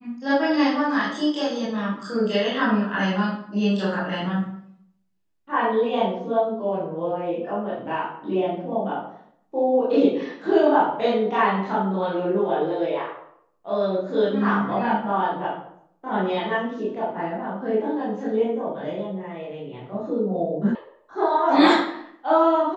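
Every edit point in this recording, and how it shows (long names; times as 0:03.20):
0:20.75: cut off before it has died away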